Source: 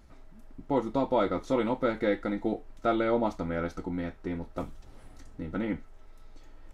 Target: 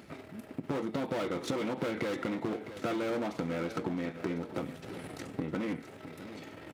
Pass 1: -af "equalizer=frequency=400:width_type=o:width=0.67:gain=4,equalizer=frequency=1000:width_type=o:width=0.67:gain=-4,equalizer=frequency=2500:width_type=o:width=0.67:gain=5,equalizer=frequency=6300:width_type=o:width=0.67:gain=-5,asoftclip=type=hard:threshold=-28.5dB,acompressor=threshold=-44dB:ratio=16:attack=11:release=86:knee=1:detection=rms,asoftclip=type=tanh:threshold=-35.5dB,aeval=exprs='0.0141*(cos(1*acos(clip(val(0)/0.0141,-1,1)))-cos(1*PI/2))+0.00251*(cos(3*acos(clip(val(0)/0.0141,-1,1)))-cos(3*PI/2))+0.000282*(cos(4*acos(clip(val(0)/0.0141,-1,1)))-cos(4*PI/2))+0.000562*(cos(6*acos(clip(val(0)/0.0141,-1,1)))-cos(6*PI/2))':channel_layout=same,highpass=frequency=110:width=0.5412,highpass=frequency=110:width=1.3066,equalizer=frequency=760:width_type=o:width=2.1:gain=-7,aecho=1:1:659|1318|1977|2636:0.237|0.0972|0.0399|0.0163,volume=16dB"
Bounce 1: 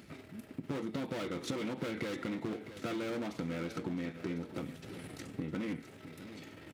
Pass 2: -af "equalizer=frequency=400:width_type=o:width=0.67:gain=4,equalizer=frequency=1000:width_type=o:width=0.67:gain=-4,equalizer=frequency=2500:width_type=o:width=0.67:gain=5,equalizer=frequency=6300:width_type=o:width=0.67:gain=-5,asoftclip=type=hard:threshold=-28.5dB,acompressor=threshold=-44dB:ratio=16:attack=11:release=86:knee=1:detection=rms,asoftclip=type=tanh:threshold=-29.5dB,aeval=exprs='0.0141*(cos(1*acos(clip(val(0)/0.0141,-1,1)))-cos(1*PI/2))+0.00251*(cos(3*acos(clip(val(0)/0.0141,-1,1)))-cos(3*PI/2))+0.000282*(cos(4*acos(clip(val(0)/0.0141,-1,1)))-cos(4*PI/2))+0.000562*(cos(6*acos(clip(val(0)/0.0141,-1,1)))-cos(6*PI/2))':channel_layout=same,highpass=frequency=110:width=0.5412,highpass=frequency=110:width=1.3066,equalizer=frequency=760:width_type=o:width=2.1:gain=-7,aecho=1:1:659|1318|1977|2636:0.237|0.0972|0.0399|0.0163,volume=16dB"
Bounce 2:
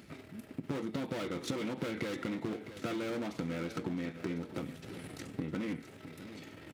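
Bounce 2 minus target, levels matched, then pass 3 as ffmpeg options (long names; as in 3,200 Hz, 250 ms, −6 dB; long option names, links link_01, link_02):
1,000 Hz band −2.5 dB
-af "equalizer=frequency=400:width_type=o:width=0.67:gain=4,equalizer=frequency=1000:width_type=o:width=0.67:gain=-4,equalizer=frequency=2500:width_type=o:width=0.67:gain=5,equalizer=frequency=6300:width_type=o:width=0.67:gain=-5,asoftclip=type=hard:threshold=-28.5dB,acompressor=threshold=-44dB:ratio=16:attack=11:release=86:knee=1:detection=rms,asoftclip=type=tanh:threshold=-29.5dB,aeval=exprs='0.0141*(cos(1*acos(clip(val(0)/0.0141,-1,1)))-cos(1*PI/2))+0.00251*(cos(3*acos(clip(val(0)/0.0141,-1,1)))-cos(3*PI/2))+0.000282*(cos(4*acos(clip(val(0)/0.0141,-1,1)))-cos(4*PI/2))+0.000562*(cos(6*acos(clip(val(0)/0.0141,-1,1)))-cos(6*PI/2))':channel_layout=same,highpass=frequency=110:width=0.5412,highpass=frequency=110:width=1.3066,aecho=1:1:659|1318|1977|2636:0.237|0.0972|0.0399|0.0163,volume=16dB"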